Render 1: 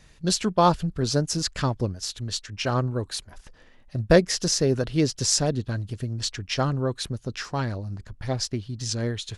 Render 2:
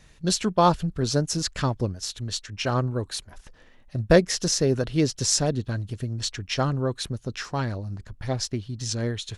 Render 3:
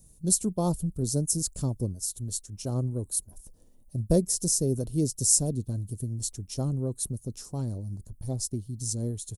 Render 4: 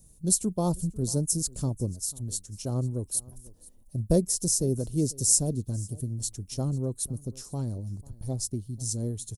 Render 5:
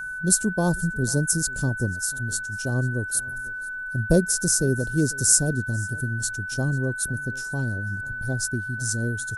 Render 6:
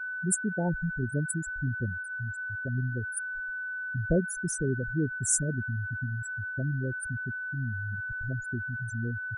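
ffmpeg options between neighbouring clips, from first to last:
-af "bandreject=f=4.8k:w=23"
-af "firequalizer=gain_entry='entry(200,0);entry(1700,-29);entry(4300,-11);entry(9200,15)':delay=0.05:min_phase=1,volume=-2.5dB"
-af "aecho=1:1:494:0.075"
-af "aeval=exprs='val(0)+0.02*sin(2*PI*1500*n/s)':c=same,volume=4dB"
-af "aeval=exprs='val(0)+0.5*0.0422*sgn(val(0))':c=same,afftfilt=real='re*gte(hypot(re,im),0.224)':imag='im*gte(hypot(re,im),0.224)':win_size=1024:overlap=0.75,volume=-7.5dB"

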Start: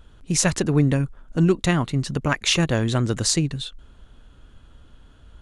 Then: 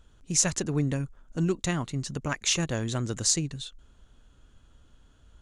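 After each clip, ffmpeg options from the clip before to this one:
-af "equalizer=f=6.7k:w=1.7:g=9,volume=-8.5dB"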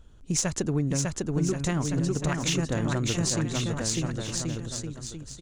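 -filter_complex "[0:a]asplit=2[a][b];[b]adynamicsmooth=sensitivity=2:basefreq=990,volume=-2dB[c];[a][c]amix=inputs=2:normalize=0,aecho=1:1:600|1080|1464|1771|2017:0.631|0.398|0.251|0.158|0.1,acompressor=threshold=-23dB:ratio=4"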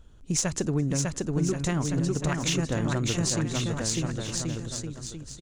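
-af "aecho=1:1:216|432:0.0668|0.016"

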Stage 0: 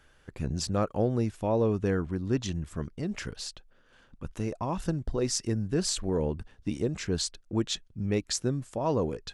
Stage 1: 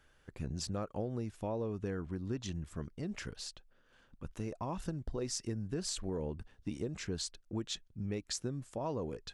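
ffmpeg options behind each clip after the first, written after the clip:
-af "acompressor=threshold=-27dB:ratio=6,volume=-6dB"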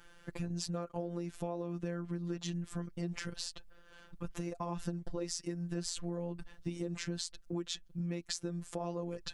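-af "afftfilt=real='hypot(re,im)*cos(PI*b)':imag='0':win_size=1024:overlap=0.75,acompressor=threshold=-48dB:ratio=3,volume=11.5dB"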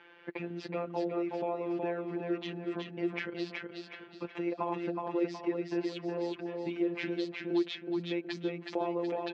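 -filter_complex "[0:a]highpass=330,equalizer=f=350:t=q:w=4:g=7,equalizer=f=890:t=q:w=4:g=3,equalizer=f=1.3k:t=q:w=4:g=-4,equalizer=f=2.3k:t=q:w=4:g=6,lowpass=f=3.2k:w=0.5412,lowpass=f=3.2k:w=1.3066,asplit=2[a][b];[b]aecho=0:1:370|740|1110|1480|1850:0.668|0.261|0.102|0.0396|0.0155[c];[a][c]amix=inputs=2:normalize=0,volume=5dB"

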